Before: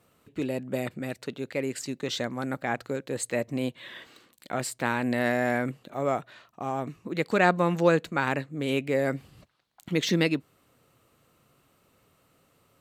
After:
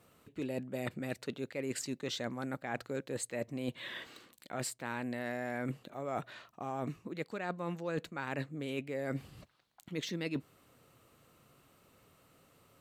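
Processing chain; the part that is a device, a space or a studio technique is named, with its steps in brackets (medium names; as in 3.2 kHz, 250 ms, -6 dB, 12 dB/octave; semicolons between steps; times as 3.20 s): compression on the reversed sound (reverse; compression 16:1, threshold -33 dBFS, peak gain reduction 19 dB; reverse)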